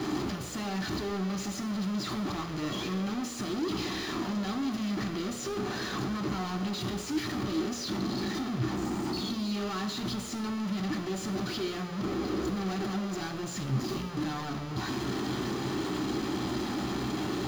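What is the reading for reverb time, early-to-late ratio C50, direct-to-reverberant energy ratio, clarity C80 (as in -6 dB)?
2.2 s, 7.5 dB, 3.0 dB, 9.0 dB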